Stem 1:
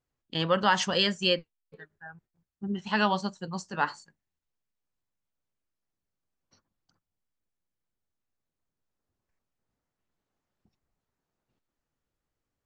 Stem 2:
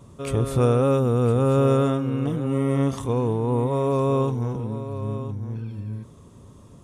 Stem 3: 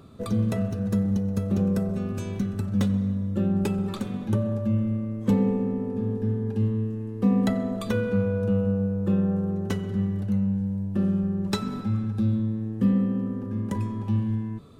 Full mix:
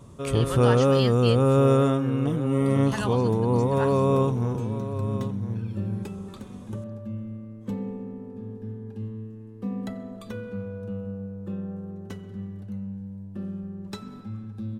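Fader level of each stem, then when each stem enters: -7.0 dB, 0.0 dB, -10.0 dB; 0.00 s, 0.00 s, 2.40 s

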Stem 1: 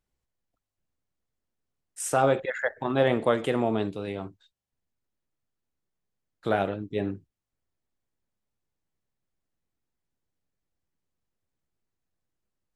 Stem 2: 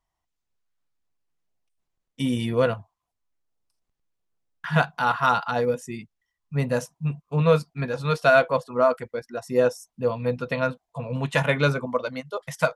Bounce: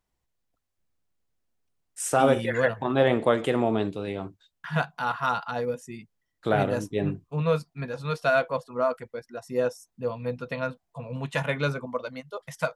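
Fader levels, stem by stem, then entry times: +1.5 dB, -5.5 dB; 0.00 s, 0.00 s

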